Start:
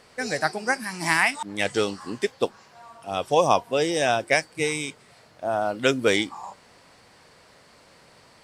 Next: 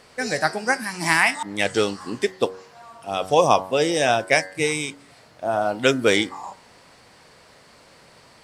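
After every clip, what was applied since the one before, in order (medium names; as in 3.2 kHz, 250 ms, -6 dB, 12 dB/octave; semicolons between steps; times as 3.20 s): de-hum 93.91 Hz, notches 22; trim +3 dB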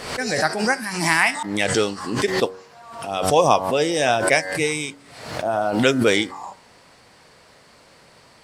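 swell ahead of each attack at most 64 dB/s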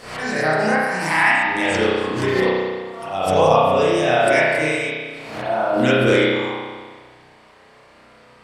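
spring tank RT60 1.5 s, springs 32 ms, chirp 70 ms, DRR -10 dB; trim -7.5 dB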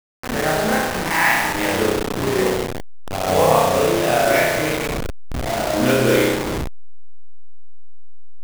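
send-on-delta sampling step -17 dBFS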